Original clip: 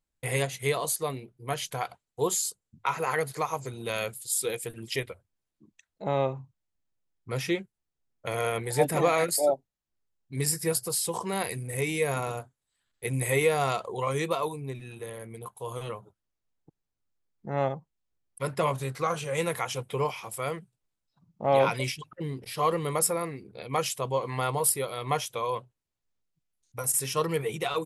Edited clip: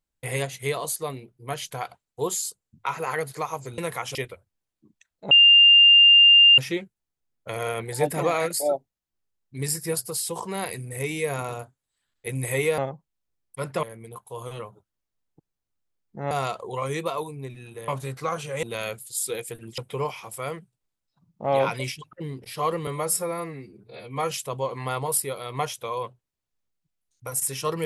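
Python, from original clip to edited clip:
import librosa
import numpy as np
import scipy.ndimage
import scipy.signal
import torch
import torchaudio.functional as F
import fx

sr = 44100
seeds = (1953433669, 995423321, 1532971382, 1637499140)

y = fx.edit(x, sr, fx.swap(start_s=3.78, length_s=1.15, other_s=19.41, other_length_s=0.37),
    fx.bleep(start_s=6.09, length_s=1.27, hz=2800.0, db=-10.0),
    fx.swap(start_s=13.56, length_s=1.57, other_s=17.61, other_length_s=1.05),
    fx.stretch_span(start_s=22.87, length_s=0.96, factor=1.5), tone=tone)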